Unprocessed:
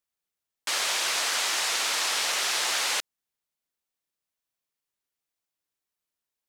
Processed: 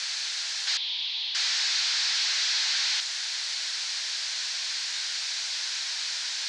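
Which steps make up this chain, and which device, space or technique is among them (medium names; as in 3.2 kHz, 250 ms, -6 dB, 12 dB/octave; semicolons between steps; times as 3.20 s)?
home computer beeper (one-bit comparator; cabinet simulation 770–5600 Hz, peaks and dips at 1.2 kHz -6 dB, 1.6 kHz +4 dB, 2.9 kHz -3 dB, 4.3 kHz +4 dB); frequency weighting ITU-R 468; 0.77–1.35 s: FFT filter 150 Hz 0 dB, 290 Hz -18 dB, 940 Hz -7 dB, 1.5 kHz -22 dB, 3.4 kHz +3 dB, 7.5 kHz -29 dB; trim -2.5 dB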